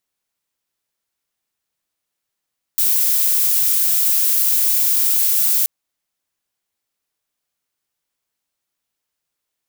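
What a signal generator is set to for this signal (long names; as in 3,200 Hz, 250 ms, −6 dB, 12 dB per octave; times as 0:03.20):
noise violet, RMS −16 dBFS 2.88 s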